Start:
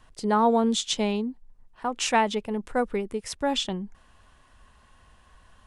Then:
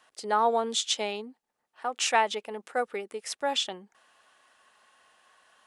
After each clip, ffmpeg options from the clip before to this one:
-af "highpass=530,bandreject=f=1k:w=8.9"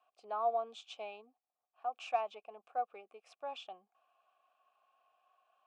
-filter_complex "[0:a]lowshelf=f=140:g=11,asoftclip=type=hard:threshold=-12dB,asplit=3[a][b][c];[a]bandpass=f=730:t=q:w=8,volume=0dB[d];[b]bandpass=f=1.09k:t=q:w=8,volume=-6dB[e];[c]bandpass=f=2.44k:t=q:w=8,volume=-9dB[f];[d][e][f]amix=inputs=3:normalize=0,volume=-3dB"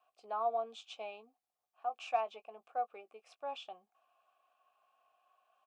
-filter_complex "[0:a]asplit=2[a][b];[b]adelay=18,volume=-12dB[c];[a][c]amix=inputs=2:normalize=0"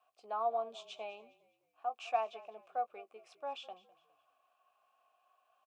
-filter_complex "[0:a]asplit=4[a][b][c][d];[b]adelay=205,afreqshift=-36,volume=-19.5dB[e];[c]adelay=410,afreqshift=-72,volume=-28.9dB[f];[d]adelay=615,afreqshift=-108,volume=-38.2dB[g];[a][e][f][g]amix=inputs=4:normalize=0"

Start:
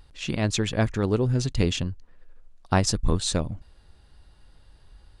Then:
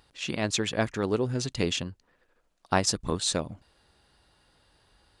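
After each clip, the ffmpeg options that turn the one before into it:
-af "highpass=f=300:p=1"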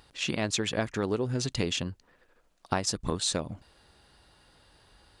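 -af "acompressor=threshold=-31dB:ratio=3,volume=4dB"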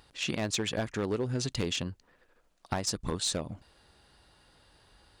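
-af "aeval=exprs='clip(val(0),-1,0.0794)':c=same,volume=-1.5dB"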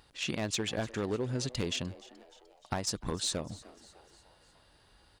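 -filter_complex "[0:a]asplit=5[a][b][c][d][e];[b]adelay=301,afreqshift=120,volume=-20dB[f];[c]adelay=602,afreqshift=240,volume=-25.4dB[g];[d]adelay=903,afreqshift=360,volume=-30.7dB[h];[e]adelay=1204,afreqshift=480,volume=-36.1dB[i];[a][f][g][h][i]amix=inputs=5:normalize=0,volume=-2dB"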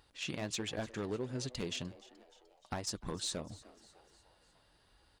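-af "flanger=delay=2:depth=5.4:regen=-61:speed=1.4:shape=triangular,volume=-1dB"

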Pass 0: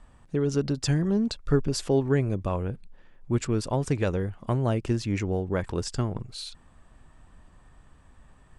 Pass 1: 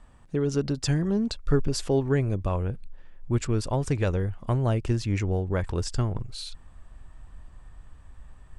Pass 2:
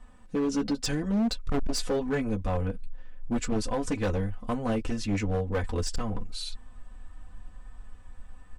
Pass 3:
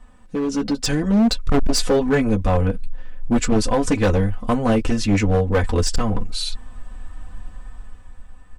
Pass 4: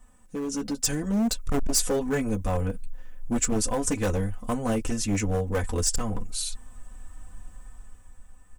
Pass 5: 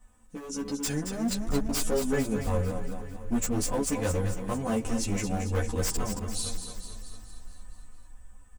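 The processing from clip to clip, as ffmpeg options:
-af "asubboost=boost=2.5:cutoff=110"
-af "aecho=1:1:4:0.9,flanger=delay=8.4:depth=2:regen=-22:speed=0.9:shape=triangular,asoftclip=type=hard:threshold=-24dB,volume=1.5dB"
-af "dynaudnorm=f=100:g=17:m=6.5dB,volume=4dB"
-af "aexciter=amount=3.9:drive=6.5:freq=6k,volume=-8.5dB"
-filter_complex "[0:a]aeval=exprs='0.0944*(abs(mod(val(0)/0.0944+3,4)-2)-1)':c=same,aecho=1:1:224|448|672|896|1120|1344|1568:0.398|0.235|0.139|0.0818|0.0482|0.0285|0.0168,asplit=2[a][b];[b]adelay=11.6,afreqshift=1.3[c];[a][c]amix=inputs=2:normalize=1"

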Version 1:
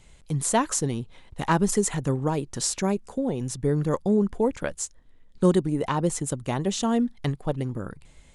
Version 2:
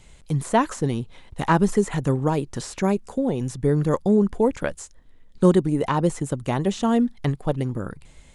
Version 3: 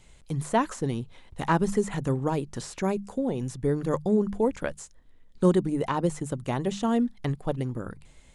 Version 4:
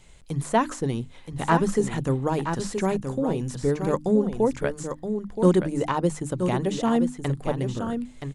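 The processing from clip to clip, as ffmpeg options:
-filter_complex "[0:a]acrossover=split=2600[a][b];[b]acompressor=threshold=-39dB:ratio=4:attack=1:release=60[c];[a][c]amix=inputs=2:normalize=0,volume=3.5dB"
-af "bandreject=f=50:t=h:w=6,bandreject=f=100:t=h:w=6,bandreject=f=150:t=h:w=6,bandreject=f=200:t=h:w=6,volume=-4.5dB"
-af "bandreject=f=50:t=h:w=6,bandreject=f=100:t=h:w=6,bandreject=f=150:t=h:w=6,bandreject=f=200:t=h:w=6,bandreject=f=250:t=h:w=6,bandreject=f=300:t=h:w=6,aecho=1:1:974:0.422,volume=2.5dB"

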